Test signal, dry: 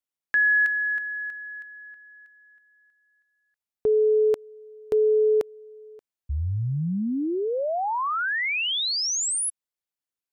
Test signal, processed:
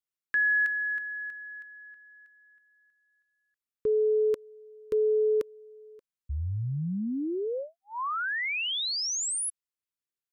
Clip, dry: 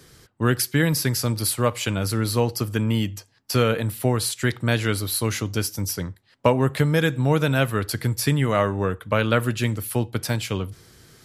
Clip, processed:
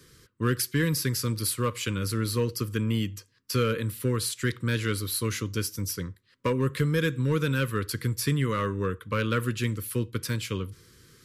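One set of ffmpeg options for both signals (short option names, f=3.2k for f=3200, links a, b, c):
-filter_complex "[0:a]asplit=2[a][b];[b]aeval=exprs='0.224*(abs(mod(val(0)/0.224+3,4)-2)-1)':c=same,volume=-8dB[c];[a][c]amix=inputs=2:normalize=0,asuperstop=centerf=730:order=8:qfactor=1.7,volume=-7.5dB"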